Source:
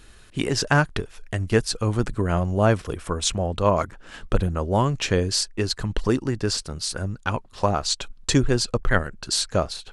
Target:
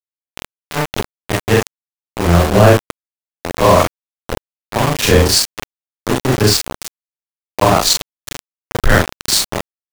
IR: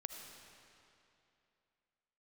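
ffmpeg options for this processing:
-af "afftfilt=real='re':imag='-im':win_size=4096:overlap=0.75,tremolo=f=0.76:d=0.92,equalizer=f=1.4k:t=o:w=0.3:g=-5,aeval=exprs='val(0)*gte(abs(val(0)),0.0316)':c=same,apsyclip=19.5dB,volume=-1.5dB"

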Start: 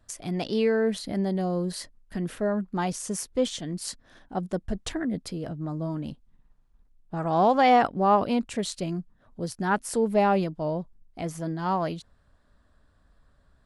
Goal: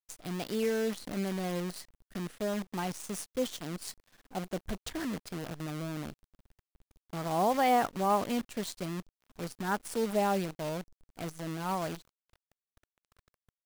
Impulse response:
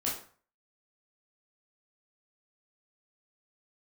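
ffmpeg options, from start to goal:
-af "acrusher=bits=6:dc=4:mix=0:aa=0.000001,volume=-7dB"

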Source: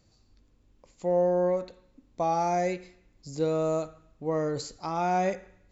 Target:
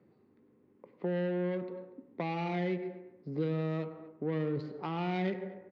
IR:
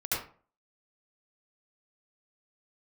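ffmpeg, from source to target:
-filter_complex "[0:a]asplit=2[a][b];[1:a]atrim=start_sample=2205,asetrate=31311,aresample=44100[c];[b][c]afir=irnorm=-1:irlink=0,volume=-20dB[d];[a][d]amix=inputs=2:normalize=0,asoftclip=type=tanh:threshold=-19dB,adynamicsmooth=sensitivity=2:basefreq=1.2k,highpass=f=150:w=0.5412,highpass=f=150:w=1.3066,equalizer=f=400:t=q:w=4:g=8,equalizer=f=650:t=q:w=4:g=-6,equalizer=f=2k:t=q:w=4:g=7,lowpass=f=4.1k:w=0.5412,lowpass=f=4.1k:w=1.3066,asplit=2[e][f];[f]adelay=239.1,volume=-25dB,highshelf=f=4k:g=-5.38[g];[e][g]amix=inputs=2:normalize=0,acrossover=split=230|3000[h][i][j];[i]acompressor=threshold=-41dB:ratio=6[k];[h][k][j]amix=inputs=3:normalize=0,volume=4.5dB"

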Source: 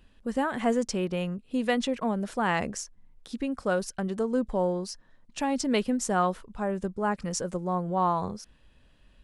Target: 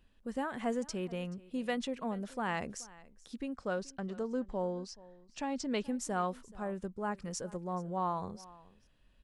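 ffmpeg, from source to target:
-filter_complex "[0:a]asettb=1/sr,asplit=3[a][b][c];[a]atrim=end=3.544[d];[b]atrim=start=3.54:end=5.84,asetpts=PTS-STARTPTS,afade=t=in:d=0.004:c=qsin,afade=t=out:st=2.296:d=0.004:c=qsin,lowpass=f=7.5k:w=0.5412,lowpass=f=7.5k:w=1.3066[e];[c]atrim=start=5.836[f];[d][e]acrossfade=d=0.004:c1=hsin:c2=qsin[g];[g][f]acrossfade=d=0.004:c1=qsin:c2=hsin,aecho=1:1:429:0.0891,volume=-8.5dB"

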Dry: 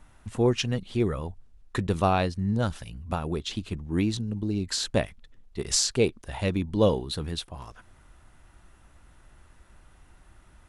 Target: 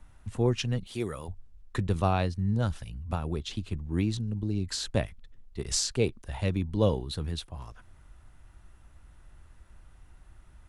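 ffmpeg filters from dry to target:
-filter_complex "[0:a]asettb=1/sr,asplit=3[a][b][c];[a]atrim=end=0.864[d];[b]atrim=start=0.86:end=1.28,asetpts=PTS-STARTPTS,afade=t=in:d=0.004:c=qsin,afade=t=out:st=0.416:d=0.004:c=qsin,aemphasis=mode=production:type=bsi[e];[c]atrim=start=1.276[f];[d][e]acrossfade=d=0.004:c1=hsin:c2=qsin[g];[g][f]acrossfade=d=0.004:c1=qsin:c2=hsin,acrossover=split=130|2200[h][i][j];[h]acontrast=78[k];[k][i][j]amix=inputs=3:normalize=0,volume=-4.5dB"

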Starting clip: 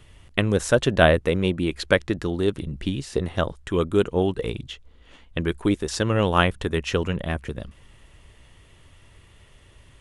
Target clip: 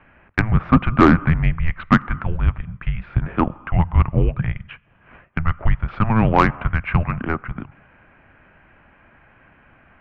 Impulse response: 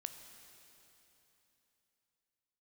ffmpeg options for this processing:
-filter_complex "[0:a]highpass=f=210:t=q:w=0.5412,highpass=f=210:t=q:w=1.307,lowpass=f=2.5k:t=q:w=0.5176,lowpass=f=2.5k:t=q:w=0.7071,lowpass=f=2.5k:t=q:w=1.932,afreqshift=-330,asplit=2[a][b];[b]equalizer=f=1.2k:t=o:w=0.47:g=11.5[c];[1:a]atrim=start_sample=2205,afade=t=out:st=0.33:d=0.01,atrim=end_sample=14994[d];[c][d]afir=irnorm=-1:irlink=0,volume=-11dB[e];[a][e]amix=inputs=2:normalize=0,acontrast=85,volume=-1dB"

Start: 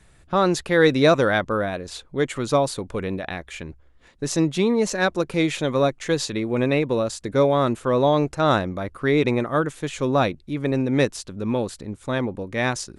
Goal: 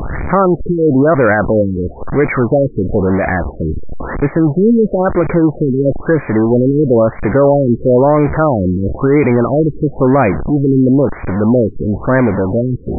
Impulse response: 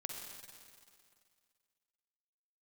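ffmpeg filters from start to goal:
-af "aeval=exprs='val(0)+0.5*0.075*sgn(val(0))':c=same,alimiter=level_in=11.5dB:limit=-1dB:release=50:level=0:latency=1,afftfilt=real='re*lt(b*sr/1024,460*pow(2500/460,0.5+0.5*sin(2*PI*1*pts/sr)))':imag='im*lt(b*sr/1024,460*pow(2500/460,0.5+0.5*sin(2*PI*1*pts/sr)))':win_size=1024:overlap=0.75,volume=-1.5dB"

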